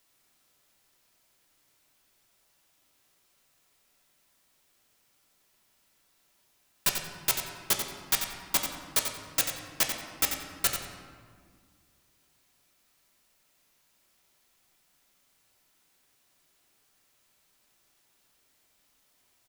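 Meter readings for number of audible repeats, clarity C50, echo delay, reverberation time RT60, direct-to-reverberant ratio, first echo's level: 1, 3.5 dB, 90 ms, 1.8 s, 1.0 dB, −8.0 dB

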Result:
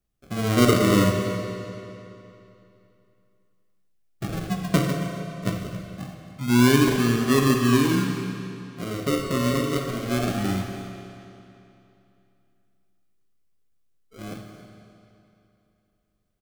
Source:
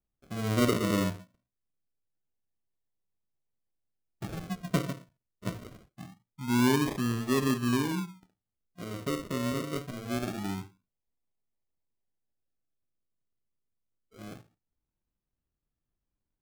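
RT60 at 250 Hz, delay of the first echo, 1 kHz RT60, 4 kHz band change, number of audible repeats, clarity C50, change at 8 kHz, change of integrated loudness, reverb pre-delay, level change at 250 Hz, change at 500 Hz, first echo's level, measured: 2.9 s, 273 ms, 2.9 s, +9.0 dB, 1, 4.0 dB, +8.5 dB, +7.5 dB, 12 ms, +8.5 dB, +9.0 dB, −16.5 dB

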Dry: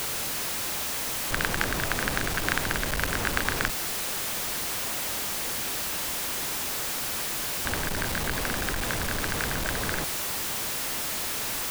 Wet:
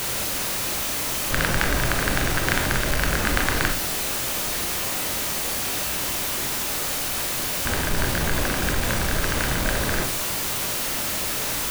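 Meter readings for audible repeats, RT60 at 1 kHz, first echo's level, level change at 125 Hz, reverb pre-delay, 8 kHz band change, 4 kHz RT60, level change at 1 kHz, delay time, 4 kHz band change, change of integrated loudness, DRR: no echo audible, 0.40 s, no echo audible, +7.5 dB, 15 ms, +4.5 dB, 0.40 s, +4.5 dB, no echo audible, +4.5 dB, +4.5 dB, 2.5 dB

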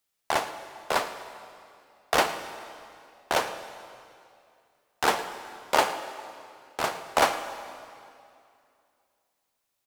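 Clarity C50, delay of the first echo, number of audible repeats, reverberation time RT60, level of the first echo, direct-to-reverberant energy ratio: 9.5 dB, 111 ms, 1, 2.5 s, −17.5 dB, 9.5 dB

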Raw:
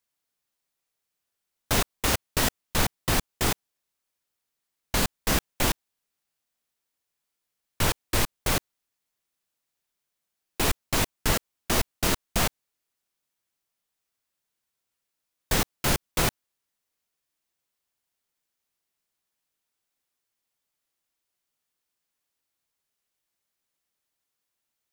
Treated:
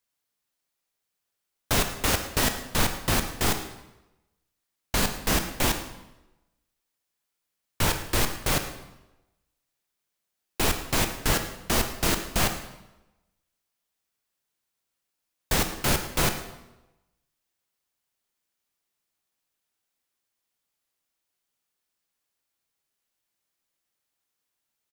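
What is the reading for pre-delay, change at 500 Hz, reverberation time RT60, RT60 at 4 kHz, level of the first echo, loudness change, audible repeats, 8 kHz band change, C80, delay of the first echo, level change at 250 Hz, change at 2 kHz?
19 ms, +1.0 dB, 1.0 s, 0.80 s, −16.5 dB, +0.5 dB, 1, +0.5 dB, 10.5 dB, 110 ms, +1.0 dB, +1.0 dB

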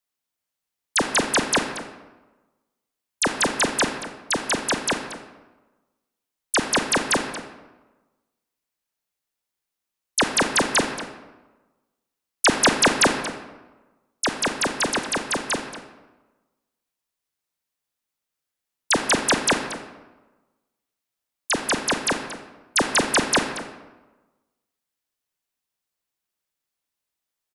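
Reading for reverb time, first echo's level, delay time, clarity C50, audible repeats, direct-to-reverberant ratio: 1.2 s, −14.5 dB, 230 ms, 7.0 dB, 1, 5.5 dB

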